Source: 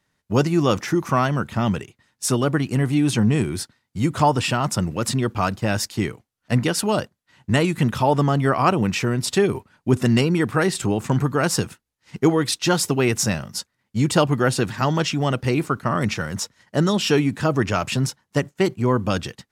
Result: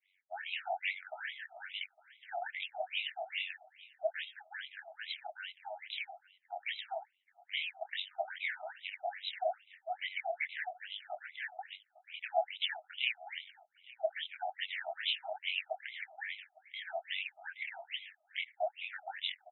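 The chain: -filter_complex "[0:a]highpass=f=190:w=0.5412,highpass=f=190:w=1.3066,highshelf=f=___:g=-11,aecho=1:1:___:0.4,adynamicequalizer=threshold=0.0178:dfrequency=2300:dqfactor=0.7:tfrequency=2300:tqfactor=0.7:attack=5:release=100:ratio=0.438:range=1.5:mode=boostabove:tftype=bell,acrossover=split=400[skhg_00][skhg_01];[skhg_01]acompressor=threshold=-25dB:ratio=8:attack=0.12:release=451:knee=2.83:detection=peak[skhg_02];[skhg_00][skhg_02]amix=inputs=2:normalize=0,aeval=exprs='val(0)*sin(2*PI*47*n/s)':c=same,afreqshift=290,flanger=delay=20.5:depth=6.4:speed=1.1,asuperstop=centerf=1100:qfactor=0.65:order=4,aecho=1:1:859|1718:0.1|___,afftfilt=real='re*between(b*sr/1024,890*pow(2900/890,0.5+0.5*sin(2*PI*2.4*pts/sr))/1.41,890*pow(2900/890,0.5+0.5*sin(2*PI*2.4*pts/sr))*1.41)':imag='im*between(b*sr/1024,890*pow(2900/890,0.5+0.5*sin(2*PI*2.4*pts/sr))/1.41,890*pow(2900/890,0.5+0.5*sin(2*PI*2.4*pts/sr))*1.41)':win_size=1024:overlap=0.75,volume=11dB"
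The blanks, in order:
6900, 4.1, 0.015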